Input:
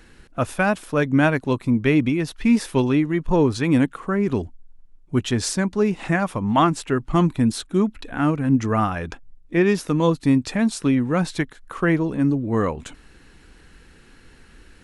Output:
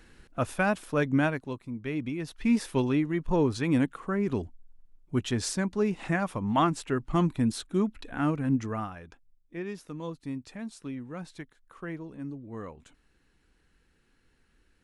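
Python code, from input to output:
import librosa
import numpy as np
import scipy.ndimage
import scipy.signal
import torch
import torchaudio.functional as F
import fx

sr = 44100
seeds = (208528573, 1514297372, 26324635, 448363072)

y = fx.gain(x, sr, db=fx.line((1.13, -6.0), (1.69, -18.0), (2.51, -7.0), (8.48, -7.0), (9.06, -18.5)))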